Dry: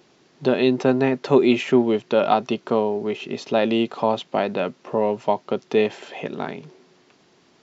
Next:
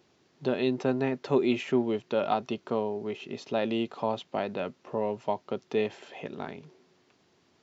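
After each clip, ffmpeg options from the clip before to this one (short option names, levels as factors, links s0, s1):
-af "equalizer=f=88:w=3:g=10.5,volume=0.355"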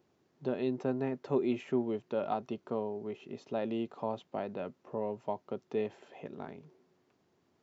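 -af "equalizer=f=4000:w=0.46:g=-8.5,volume=0.562"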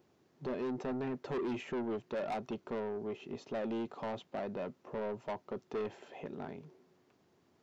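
-af "asoftclip=type=tanh:threshold=0.0178,volume=1.33"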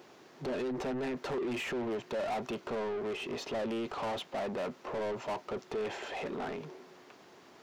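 -filter_complex "[0:a]asplit=2[s0][s1];[s1]highpass=f=720:p=1,volume=14.1,asoftclip=type=tanh:threshold=0.0237[s2];[s0][s2]amix=inputs=2:normalize=0,lowpass=f=5600:p=1,volume=0.501,volume=1.26"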